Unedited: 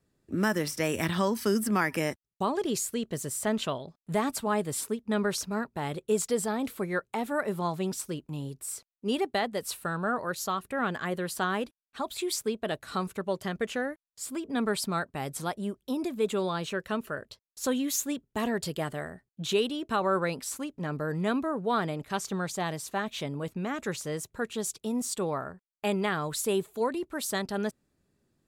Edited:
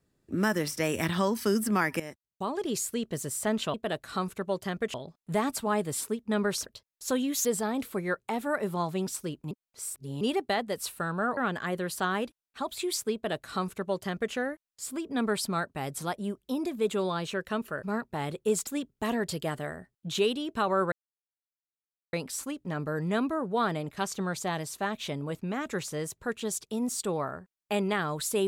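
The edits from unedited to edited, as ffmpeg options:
-filter_complex "[0:a]asplit=12[a][b][c][d][e][f][g][h][i][j][k][l];[a]atrim=end=2,asetpts=PTS-STARTPTS,afade=t=out:st=1.996:d=0.004:c=hsin:silence=0.211349[m];[b]atrim=start=2:end=3.742,asetpts=PTS-STARTPTS,afade=t=in:d=0.88:silence=0.211349[n];[c]atrim=start=12.528:end=13.732[o];[d]atrim=start=3.738:end=5.462[p];[e]atrim=start=17.218:end=18.012[q];[f]atrim=start=6.298:end=8.362[r];[g]atrim=start=8.358:end=9.062,asetpts=PTS-STARTPTS,areverse[s];[h]atrim=start=9.058:end=10.222[t];[i]atrim=start=10.758:end=17.222[u];[j]atrim=start=5.458:end=6.302[v];[k]atrim=start=18.008:end=20.26,asetpts=PTS-STARTPTS,afade=t=out:st=2.248:d=0.004:c=hsin,apad=pad_dur=1.21[w];[l]atrim=start=20.26,asetpts=PTS-STARTPTS,afade=t=in:d=0.004:c=hsin[x];[m][n]concat=n=2:v=0:a=1[y];[y][o]acrossfade=d=0.004:c1=hsin:c2=hsin[z];[z][p]acrossfade=d=0.004:c1=hsin:c2=hsin[aa];[aa][q]acrossfade=d=0.004:c1=hsin:c2=hsin[ab];[ab][r]acrossfade=d=0.004:c1=hsin:c2=hsin[ac];[ac][s]acrossfade=d=0.004:c1=hsin:c2=hsin[ad];[ad][t]acrossfade=d=0.004:c1=hsin:c2=hsin[ae];[ae][u]acrossfade=d=0.004:c1=hsin:c2=hsin[af];[af][v]acrossfade=d=0.004:c1=hsin:c2=hsin[ag];[w][x]concat=n=2:v=0:a=1[ah];[ag][ah]acrossfade=d=0.004:c1=hsin:c2=hsin"

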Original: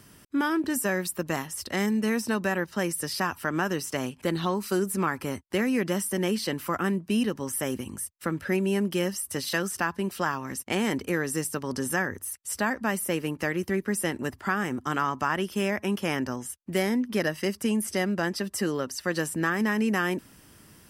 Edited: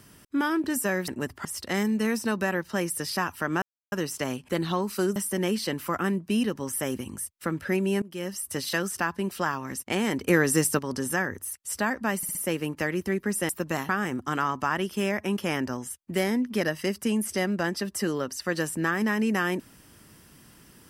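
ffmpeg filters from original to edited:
-filter_complex "[0:a]asplit=13[a][b][c][d][e][f][g][h][i][j][k][l][m];[a]atrim=end=1.082[n];[b]atrim=start=14.108:end=14.482[o];[c]atrim=start=1.478:end=3.65,asetpts=PTS-STARTPTS,afade=t=out:st=2.168:d=0.004:c=hsin,apad=pad_dur=0.3[p];[d]atrim=start=3.65:end=4.892,asetpts=PTS-STARTPTS,afade=t=in:d=0.004:c=hsin[q];[e]atrim=start=5.958:end=8.82,asetpts=PTS-STARTPTS,afade=t=out:st=2.858:d=0.004:c=hsin:silence=0.0668344[r];[f]atrim=start=8.82:end=11.082,asetpts=PTS-STARTPTS,afade=t=in:d=0.45:silence=0.0668344[s];[g]atrim=start=11.078:end=11.592,asetpts=PTS-STARTPTS,volume=6.5dB[t];[h]atrim=start=11.588:end=13.032[u];[i]atrim=start=12.968:end=13.032[v];[j]atrim=start=12.968:end=13.032[w];[k]atrim=start=12.968:end=14.112[x];[l]atrim=start=1.078:end=1.482[y];[m]atrim=start=14.478[z];[n][o]acrossfade=d=0.004:c1=hsin:c2=hsin[aa];[p][q]concat=n=2:v=0:a=1[ab];[aa][ab]acrossfade=d=0.004:c1=hsin:c2=hsin[ac];[r][s]concat=n=2:v=0:a=1[ad];[ac][ad]acrossfade=d=0.004:c1=hsin:c2=hsin[ae];[ae][t]acrossfade=d=0.004:c1=hsin:c2=hsin[af];[af][u]acrossfade=d=0.004:c1=hsin:c2=hsin[ag];[ag][v]acrossfade=d=0.004:c1=hsin:c2=hsin[ah];[ah][w]acrossfade=d=0.004:c1=hsin:c2=hsin[ai];[ai][x]acrossfade=d=0.004:c1=hsin:c2=hsin[aj];[aj][y]acrossfade=d=0.004:c1=hsin:c2=hsin[ak];[ak][z]acrossfade=d=0.004:c1=hsin:c2=hsin"

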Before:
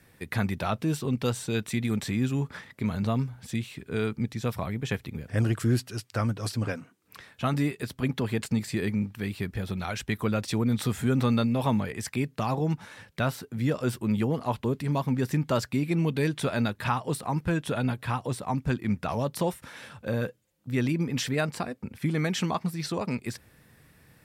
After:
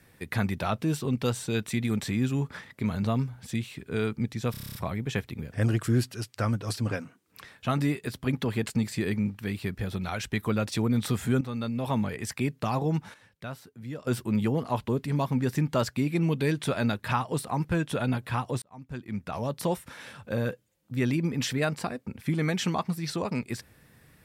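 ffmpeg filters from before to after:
-filter_complex "[0:a]asplit=13[a][b][c][d][e][f][g][h][i][j][k][l][m];[a]atrim=end=4.542[n];[b]atrim=start=4.508:end=4.542[o];[c]atrim=start=4.508:end=4.542[p];[d]atrim=start=4.508:end=4.542[q];[e]atrim=start=4.508:end=4.542[r];[f]atrim=start=4.508:end=4.542[s];[g]atrim=start=4.508:end=4.542[t];[h]atrim=start=4.508:end=4.542[u];[i]atrim=start=4.508:end=11.17,asetpts=PTS-STARTPTS,afade=t=out:st=6.658:d=0.004:c=hsin:silence=0.199526[v];[j]atrim=start=11.17:end=12.902,asetpts=PTS-STARTPTS,afade=t=in:d=0.76:silence=0.199526[w];[k]atrim=start=12.898:end=13.832,asetpts=PTS-STARTPTS,volume=-11dB[x];[l]atrim=start=13.828:end=18.38,asetpts=PTS-STARTPTS,afade=t=out:st=4.548:d=0.004:c=hsin[y];[m]atrim=start=18.38,asetpts=PTS-STARTPTS,afade=t=in:d=1.11[z];[n][o]acrossfade=d=0.004:c1=hsin:c2=hsin[aa];[aa][p]acrossfade=d=0.004:c1=hsin:c2=hsin[ab];[ab][q]acrossfade=d=0.004:c1=hsin:c2=hsin[ac];[ac][r]acrossfade=d=0.004:c1=hsin:c2=hsin[ad];[ad][s]acrossfade=d=0.004:c1=hsin:c2=hsin[ae];[ae][t]acrossfade=d=0.004:c1=hsin:c2=hsin[af];[af][u]acrossfade=d=0.004:c1=hsin:c2=hsin[ag];[v][w]concat=n=2:v=0:a=1[ah];[ag][ah]acrossfade=d=0.004:c1=hsin:c2=hsin[ai];[ai][x]acrossfade=d=0.004:c1=hsin:c2=hsin[aj];[y][z]concat=n=2:v=0:a=1[ak];[aj][ak]acrossfade=d=0.004:c1=hsin:c2=hsin"

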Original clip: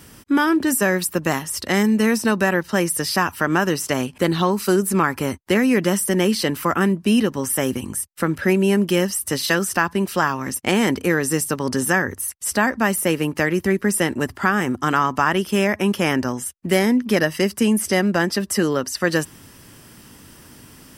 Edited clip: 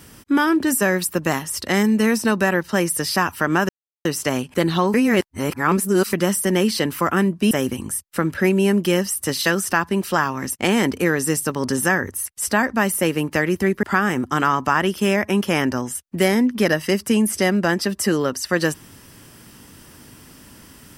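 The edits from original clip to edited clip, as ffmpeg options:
-filter_complex "[0:a]asplit=6[a][b][c][d][e][f];[a]atrim=end=3.69,asetpts=PTS-STARTPTS,afade=t=out:st=3.686:d=0.004:c=hsin,apad=pad_dur=0.36[g];[b]atrim=start=3.69:end=4.582,asetpts=PTS-STARTPTS,afade=t=in:d=0.004:c=hsin[h];[c]atrim=start=4.578:end=5.772,asetpts=PTS-STARTPTS,areverse[i];[d]atrim=start=5.768:end=7.152[j];[e]atrim=start=7.548:end=13.872[k];[f]atrim=start=14.338[l];[g][h]concat=n=2:v=0:a=1[m];[m][i]acrossfade=d=0.004:c1=hsin:c2=hsin[n];[n][j]acrossfade=d=0.004:c1=hsin:c2=hsin[o];[o][k]acrossfade=d=0.004:c1=hsin:c2=hsin[p];[p][l]acrossfade=d=0.004:c1=hsin:c2=hsin"

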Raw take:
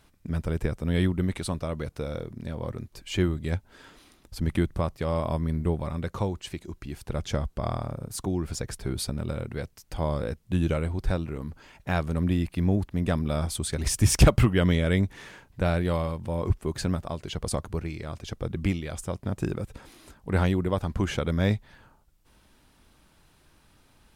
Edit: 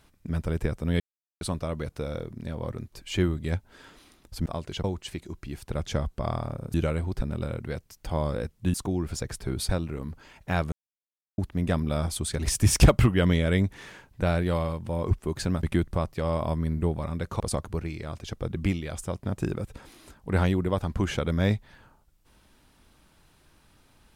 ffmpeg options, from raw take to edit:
-filter_complex "[0:a]asplit=13[a][b][c][d][e][f][g][h][i][j][k][l][m];[a]atrim=end=1,asetpts=PTS-STARTPTS,afade=t=out:st=0.996:d=0.004:c=hsin[n];[b]atrim=start=1:end=1.41,asetpts=PTS-STARTPTS,volume=0[o];[c]atrim=start=1.41:end=4.462,asetpts=PTS-STARTPTS,afade=t=in:d=0.004:c=hsin[p];[d]atrim=start=17.018:end=17.402[q];[e]atrim=start=6.228:end=8.132[r];[f]atrim=start=10.608:end=11.082[s];[g]atrim=start=9.078:end=10.612[t];[h]atrim=start=8.128:end=9.082[u];[i]atrim=start=11.078:end=12.11,asetpts=PTS-STARTPTS,afade=t=out:st=1.028:d=0.004:c=hsin[v];[j]atrim=start=12.11:end=12.77,asetpts=PTS-STARTPTS,volume=0[w];[k]atrim=start=12.77:end=17.022,asetpts=PTS-STARTPTS,afade=t=in:d=0.004:c=hsin[x];[l]atrim=start=4.458:end=6.232[y];[m]atrim=start=17.398[z];[n][o][p]concat=n=3:v=0:a=1[aa];[aa][q]acrossfade=d=0.004:c1=hsin:c2=hsin[ab];[ab][r]acrossfade=d=0.004:c1=hsin:c2=hsin[ac];[ac][s]acrossfade=d=0.004:c1=hsin:c2=hsin[ad];[ad][t]acrossfade=d=0.004:c1=hsin:c2=hsin[ae];[ae][u]acrossfade=d=0.004:c1=hsin:c2=hsin[af];[v][w][x]concat=n=3:v=0:a=1[ag];[af][ag]acrossfade=d=0.004:c1=hsin:c2=hsin[ah];[ah][y]acrossfade=d=0.004:c1=hsin:c2=hsin[ai];[ai][z]acrossfade=d=0.004:c1=hsin:c2=hsin"

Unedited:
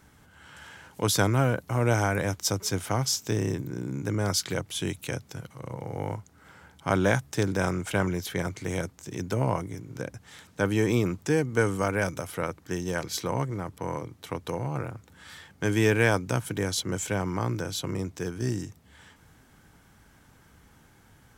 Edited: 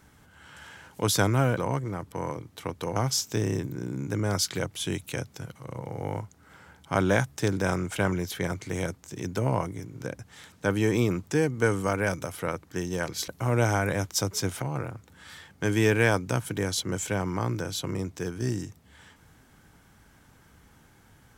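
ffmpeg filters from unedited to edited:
-filter_complex "[0:a]asplit=5[a][b][c][d][e];[a]atrim=end=1.572[f];[b]atrim=start=13.228:end=14.622[g];[c]atrim=start=2.908:end=13.232[h];[d]atrim=start=1.568:end=2.912[i];[e]atrim=start=14.618[j];[f][g]acrossfade=d=0.004:c1=hsin:c2=hsin[k];[k][h]acrossfade=d=0.004:c1=hsin:c2=hsin[l];[l][i]acrossfade=d=0.004:c1=hsin:c2=hsin[m];[m][j]acrossfade=d=0.004:c1=hsin:c2=hsin"

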